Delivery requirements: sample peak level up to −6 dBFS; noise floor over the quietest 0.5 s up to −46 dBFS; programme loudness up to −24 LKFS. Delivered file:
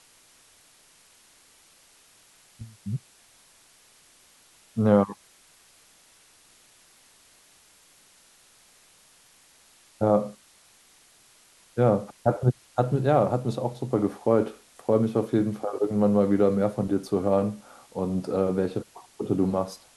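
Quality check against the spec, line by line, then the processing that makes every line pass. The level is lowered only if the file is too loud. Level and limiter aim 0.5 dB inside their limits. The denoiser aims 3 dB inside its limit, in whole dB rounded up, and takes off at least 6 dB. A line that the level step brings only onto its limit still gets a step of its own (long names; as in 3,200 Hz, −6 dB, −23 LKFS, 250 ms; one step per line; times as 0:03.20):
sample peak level −7.0 dBFS: in spec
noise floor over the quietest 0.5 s −58 dBFS: in spec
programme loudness −25.5 LKFS: in spec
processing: no processing needed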